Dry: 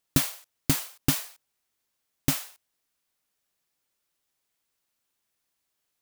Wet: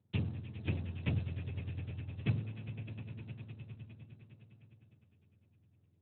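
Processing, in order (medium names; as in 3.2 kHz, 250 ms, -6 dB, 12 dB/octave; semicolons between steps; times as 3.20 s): spectrum inverted on a logarithmic axis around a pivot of 850 Hz; compression 6:1, threshold -33 dBFS, peak gain reduction 16 dB; 1.11–2.40 s: dynamic bell 120 Hz, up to +4 dB, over -50 dBFS, Q 3.5; on a send: echo with a slow build-up 102 ms, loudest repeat 5, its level -14 dB; on the sum: trim +3 dB; Speex 8 kbps 8 kHz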